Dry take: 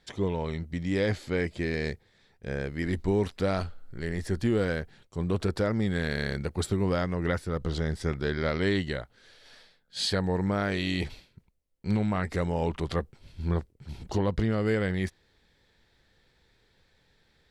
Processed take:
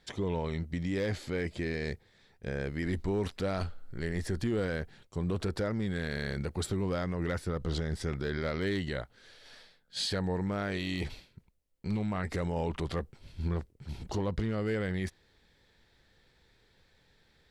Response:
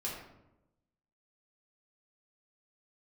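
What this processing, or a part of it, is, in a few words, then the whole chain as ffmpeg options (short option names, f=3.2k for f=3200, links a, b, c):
clipper into limiter: -af "asoftclip=type=hard:threshold=-18.5dB,alimiter=limit=-24dB:level=0:latency=1:release=32"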